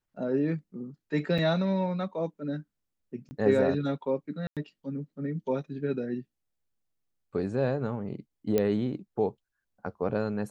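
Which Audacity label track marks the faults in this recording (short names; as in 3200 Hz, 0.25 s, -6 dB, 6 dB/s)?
1.380000	1.390000	gap 5.2 ms
3.290000	3.310000	gap 20 ms
4.470000	4.570000	gap 97 ms
8.580000	8.580000	pop -13 dBFS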